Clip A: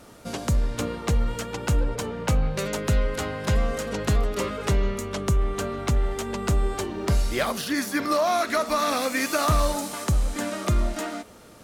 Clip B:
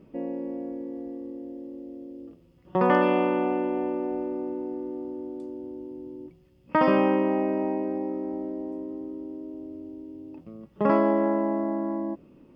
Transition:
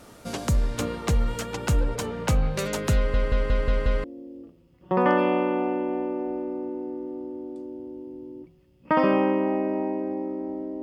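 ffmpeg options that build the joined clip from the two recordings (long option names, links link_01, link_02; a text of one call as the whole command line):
ffmpeg -i cue0.wav -i cue1.wav -filter_complex "[0:a]apad=whole_dur=10.82,atrim=end=10.82,asplit=6[link_01][link_02][link_03][link_04][link_05][link_06];[link_01]atrim=end=3.142[link_07];[link_02]atrim=start=2.958:end=3.142[link_08];[link_03]atrim=start=2.958:end=3.142[link_09];[link_04]atrim=start=2.958:end=3.142[link_10];[link_05]atrim=start=2.958:end=3.142[link_11];[link_06]atrim=start=2.958:end=3.142[link_12];[1:a]atrim=start=1.878:end=8.66[link_13];[link_07][link_08]acrossfade=duration=0.004:curve1=hsin:curve2=hsin[link_14];[link_14][link_09]acrossfade=duration=0.004:curve1=hsin:curve2=hsin[link_15];[link_15][link_10]acrossfade=duration=0.004:curve1=hsin:curve2=hsin[link_16];[link_16][link_11]acrossfade=duration=0.004:curve1=hsin:curve2=hsin[link_17];[link_17][link_12]acrossfade=duration=0.004:curve1=hsin:curve2=hsin[link_18];[link_18][link_13]acrossfade=duration=0.004:curve1=hsin:curve2=hsin" out.wav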